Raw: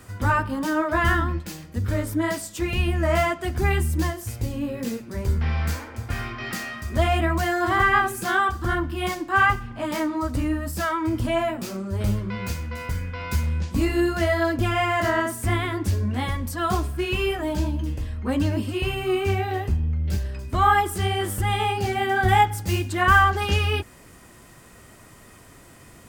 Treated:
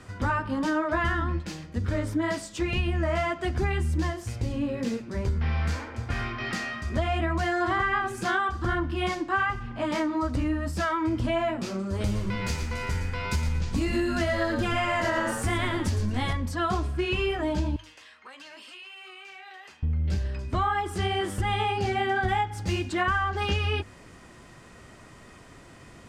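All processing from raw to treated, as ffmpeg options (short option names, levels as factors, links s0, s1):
-filter_complex "[0:a]asettb=1/sr,asplit=3[s0][s1][s2];[s0]atrim=end=11.794[s3];[s1]atrim=start=11.79:end=16.33,asetpts=PTS-STARTPTS,afade=t=in:d=0.004:c=qsin,afade=t=out:st=4.536:d=0.004:c=qsin,aemphasis=mode=production:type=cd,asplit=5[s4][s5][s6][s7][s8];[s5]adelay=113,afreqshift=-98,volume=0.398[s9];[s6]adelay=226,afreqshift=-196,volume=0.123[s10];[s7]adelay=339,afreqshift=-294,volume=0.0385[s11];[s8]adelay=452,afreqshift=-392,volume=0.0119[s12];[s4][s9][s10][s11][s12]amix=inputs=5:normalize=0,atrim=end_sample=200214[s13];[s2]atrim=start=16.326[s14];[s3][s13]acrossfade=d=0.004:c1=hsin:c2=qsin[s15];[s15][s14]acrossfade=d=0.004:c1=qsin:c2=hsin,asettb=1/sr,asplit=3[s16][s17][s18];[s16]atrim=end=17.764[s19];[s17]atrim=start=17.76:end=19.83,asetpts=PTS-STARTPTS,afade=t=in:d=0.004:c=qsin,afade=t=out:st=2.066:d=0.004:c=qsin,highpass=1300,acompressor=threshold=0.00891:ratio=12:attack=3.2:release=140:knee=1:detection=peak[s20];[s18]atrim=start=19.826[s21];[s19][s20]acrossfade=d=0.004:c1=hsin:c2=qsin[s22];[s22][s21]acrossfade=d=0.004:c1=qsin:c2=hsin,lowpass=6000,bandreject=f=50:t=h:w=6,bandreject=f=100:t=h:w=6,acompressor=threshold=0.0794:ratio=12"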